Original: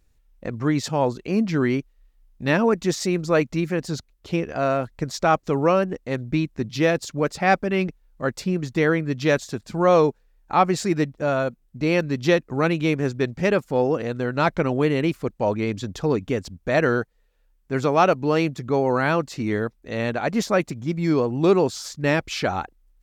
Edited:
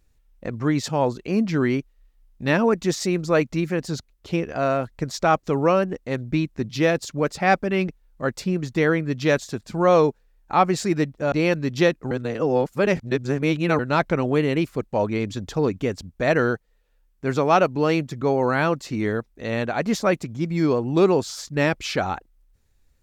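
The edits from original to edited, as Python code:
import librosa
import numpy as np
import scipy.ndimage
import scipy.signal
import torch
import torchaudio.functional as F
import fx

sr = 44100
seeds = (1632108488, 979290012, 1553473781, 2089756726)

y = fx.edit(x, sr, fx.cut(start_s=11.32, length_s=0.47),
    fx.reverse_span(start_s=12.58, length_s=1.68), tone=tone)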